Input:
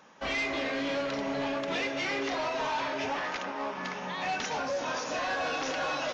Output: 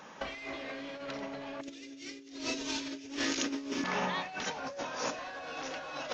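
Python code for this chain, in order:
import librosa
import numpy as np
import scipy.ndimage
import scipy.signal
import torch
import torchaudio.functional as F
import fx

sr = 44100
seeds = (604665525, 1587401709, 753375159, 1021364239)

y = fx.curve_eq(x, sr, hz=(120.0, 190.0, 270.0, 820.0, 7600.0), db=(0, -12, 11, -17, 14), at=(1.61, 3.84))
y = fx.over_compress(y, sr, threshold_db=-37.0, ratio=-0.5)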